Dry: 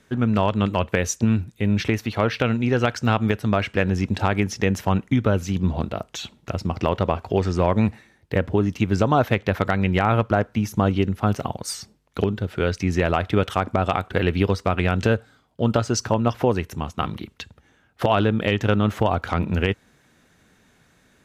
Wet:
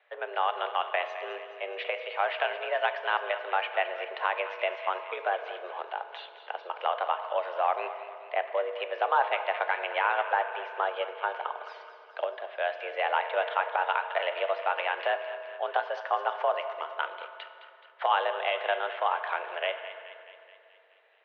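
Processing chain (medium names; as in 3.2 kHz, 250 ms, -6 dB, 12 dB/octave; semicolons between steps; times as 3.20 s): thinning echo 213 ms, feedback 65%, high-pass 900 Hz, level -12 dB; FDN reverb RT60 2.6 s, low-frequency decay 1.35×, high-frequency decay 0.5×, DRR 8.5 dB; mistuned SSB +180 Hz 380–3100 Hz; trim -5 dB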